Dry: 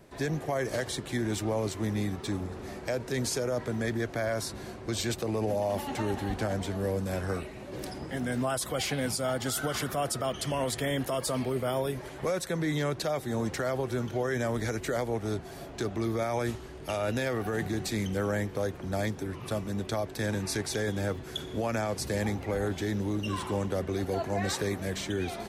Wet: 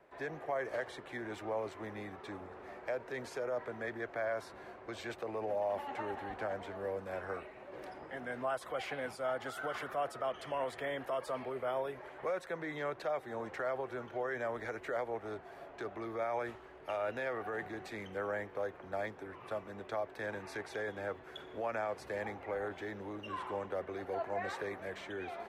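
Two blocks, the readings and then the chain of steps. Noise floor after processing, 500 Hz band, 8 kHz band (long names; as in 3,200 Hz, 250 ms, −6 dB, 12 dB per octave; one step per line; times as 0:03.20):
−53 dBFS, −6.0 dB, −22.0 dB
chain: three-way crossover with the lows and the highs turned down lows −17 dB, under 430 Hz, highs −20 dB, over 2,500 Hz
level −3 dB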